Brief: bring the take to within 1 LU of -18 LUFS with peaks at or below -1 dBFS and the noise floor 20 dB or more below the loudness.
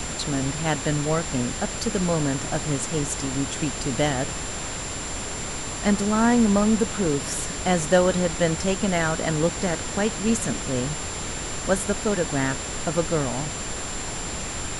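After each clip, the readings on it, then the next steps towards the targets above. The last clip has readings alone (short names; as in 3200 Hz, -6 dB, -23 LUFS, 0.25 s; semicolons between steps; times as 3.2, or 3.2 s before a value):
steady tone 7300 Hz; tone level -34 dBFS; noise floor -32 dBFS; noise floor target -45 dBFS; loudness -24.5 LUFS; peak -5.5 dBFS; loudness target -18.0 LUFS
-> notch 7300 Hz, Q 30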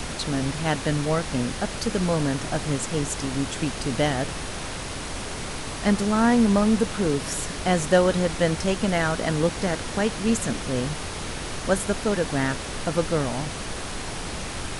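steady tone none; noise floor -33 dBFS; noise floor target -45 dBFS
-> noise print and reduce 12 dB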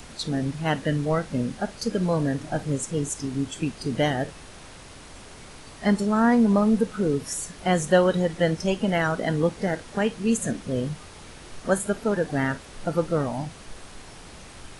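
noise floor -45 dBFS; loudness -25.0 LUFS; peak -6.0 dBFS; loudness target -18.0 LUFS
-> gain +7 dB; limiter -1 dBFS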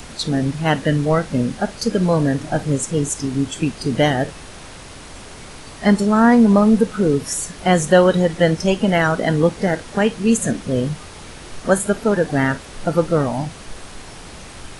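loudness -18.0 LUFS; peak -1.0 dBFS; noise floor -38 dBFS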